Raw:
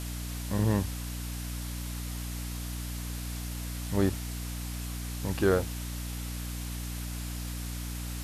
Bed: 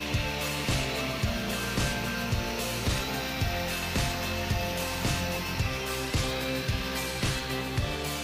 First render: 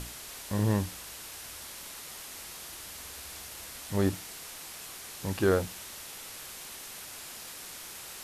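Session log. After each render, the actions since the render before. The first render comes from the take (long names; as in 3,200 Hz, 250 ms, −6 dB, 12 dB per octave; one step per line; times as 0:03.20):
mains-hum notches 60/120/180/240/300 Hz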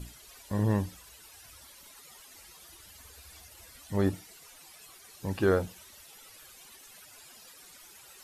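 broadband denoise 14 dB, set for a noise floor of −44 dBFS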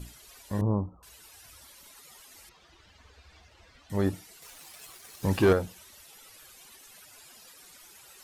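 0:00.61–0:01.03: Butterworth low-pass 1,300 Hz 96 dB per octave
0:02.49–0:03.90: high-frequency loss of the air 170 metres
0:04.42–0:05.53: leveller curve on the samples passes 2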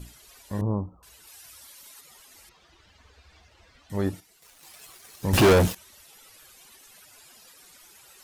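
0:01.27–0:02.01: spectral tilt +1.5 dB per octave
0:04.20–0:04.63: mu-law and A-law mismatch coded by A
0:05.33–0:05.75: leveller curve on the samples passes 5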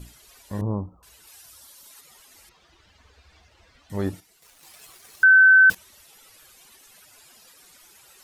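0:01.42–0:01.91: parametric band 2,200 Hz −6 dB
0:05.23–0:05.70: beep over 1,530 Hz −9.5 dBFS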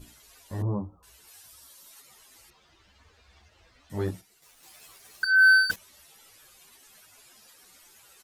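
gain into a clipping stage and back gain 14 dB
barber-pole flanger 11 ms +2.3 Hz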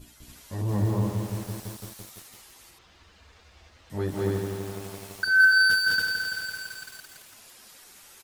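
on a send: loudspeakers that aren't time-aligned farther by 70 metres 0 dB, 97 metres −1 dB
on the sum: feedback echo at a low word length 168 ms, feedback 80%, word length 7 bits, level −5 dB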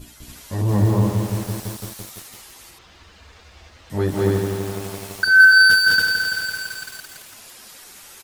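level +8 dB
brickwall limiter −3 dBFS, peak gain reduction 1 dB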